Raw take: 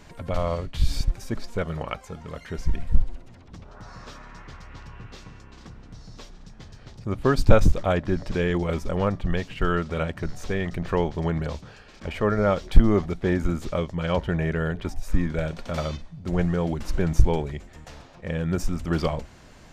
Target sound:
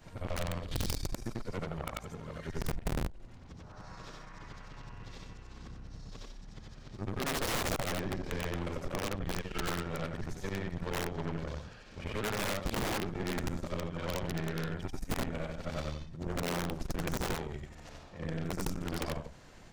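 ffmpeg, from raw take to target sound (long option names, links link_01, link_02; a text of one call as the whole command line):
ffmpeg -i in.wav -af "afftfilt=real='re':imag='-im':win_size=8192:overlap=0.75,aeval=exprs='(mod(10*val(0)+1,2)-1)/10':channel_layout=same,aeval=exprs='0.1*(cos(1*acos(clip(val(0)/0.1,-1,1)))-cos(1*PI/2))+0.0282*(cos(6*acos(clip(val(0)/0.1,-1,1)))-cos(6*PI/2))+0.0112*(cos(8*acos(clip(val(0)/0.1,-1,1)))-cos(8*PI/2))':channel_layout=same,acompressor=threshold=-33dB:ratio=2.5,volume=-1dB" out.wav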